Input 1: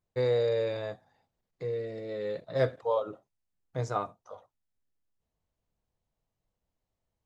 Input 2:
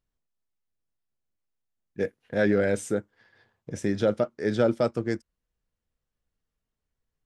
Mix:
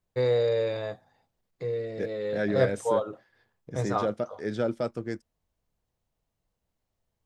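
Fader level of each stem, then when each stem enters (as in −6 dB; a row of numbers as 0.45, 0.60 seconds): +2.5, −5.5 decibels; 0.00, 0.00 seconds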